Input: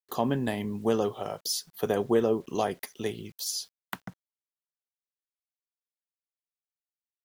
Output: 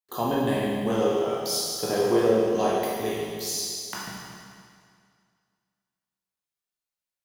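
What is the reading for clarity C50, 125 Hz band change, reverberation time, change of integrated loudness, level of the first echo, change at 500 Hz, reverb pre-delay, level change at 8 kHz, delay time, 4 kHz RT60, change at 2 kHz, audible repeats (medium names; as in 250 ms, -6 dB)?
-2.5 dB, +2.0 dB, 2.1 s, +4.0 dB, no echo, +5.0 dB, 15 ms, +5.0 dB, no echo, 2.0 s, +4.5 dB, no echo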